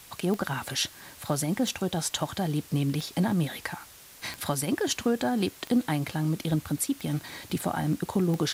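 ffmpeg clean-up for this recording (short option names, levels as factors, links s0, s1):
-af "adeclick=t=4,afftdn=nr=24:nf=-50"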